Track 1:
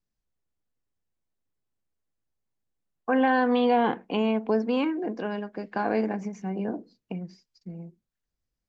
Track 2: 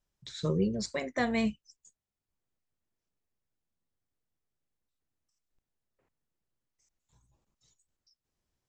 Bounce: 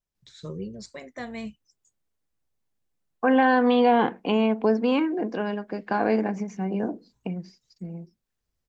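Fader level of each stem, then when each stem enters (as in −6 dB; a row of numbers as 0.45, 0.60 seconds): +3.0, −6.5 decibels; 0.15, 0.00 seconds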